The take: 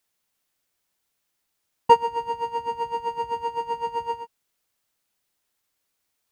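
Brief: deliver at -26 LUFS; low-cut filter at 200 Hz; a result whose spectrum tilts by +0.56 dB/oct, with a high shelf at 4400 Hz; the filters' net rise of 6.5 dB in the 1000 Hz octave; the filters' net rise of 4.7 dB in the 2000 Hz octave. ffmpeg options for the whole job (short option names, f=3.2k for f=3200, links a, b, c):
-af "highpass=200,equalizer=f=1k:t=o:g=6,equalizer=f=2k:t=o:g=6,highshelf=f=4.4k:g=-4,volume=-5.5dB"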